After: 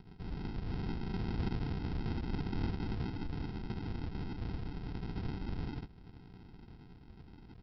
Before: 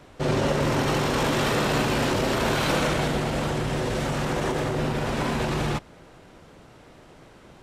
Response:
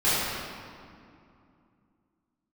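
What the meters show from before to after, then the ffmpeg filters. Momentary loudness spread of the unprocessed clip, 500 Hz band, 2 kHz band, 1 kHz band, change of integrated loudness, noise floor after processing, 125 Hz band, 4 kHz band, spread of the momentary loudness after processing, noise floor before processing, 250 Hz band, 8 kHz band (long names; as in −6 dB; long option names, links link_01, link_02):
4 LU, −22.5 dB, −23.0 dB, −22.0 dB, −15.0 dB, −56 dBFS, −10.5 dB, −22.5 dB, 18 LU, −50 dBFS, −13.0 dB, below −40 dB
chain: -filter_complex "[0:a]acompressor=threshold=-32dB:ratio=5,acrossover=split=1900[link_01][link_02];[link_01]adelay=70[link_03];[link_03][link_02]amix=inputs=2:normalize=0,aphaser=in_gain=1:out_gain=1:delay=3.4:decay=0.45:speed=0.38:type=triangular,highpass=frequency=150:width=0.5412,highpass=frequency=150:width=1.3066,aderivative,aresample=11025,acrusher=samples=19:mix=1:aa=0.000001,aresample=44100,lowshelf=frequency=220:gain=8.5,volume=8.5dB"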